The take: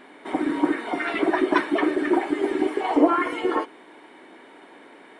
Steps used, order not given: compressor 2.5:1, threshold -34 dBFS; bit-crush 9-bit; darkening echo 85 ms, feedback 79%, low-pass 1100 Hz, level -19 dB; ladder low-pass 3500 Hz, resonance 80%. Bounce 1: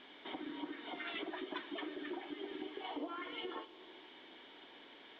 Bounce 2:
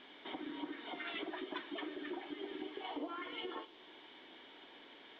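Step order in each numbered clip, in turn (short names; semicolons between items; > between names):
darkening echo > compressor > bit-crush > ladder low-pass; compressor > darkening echo > bit-crush > ladder low-pass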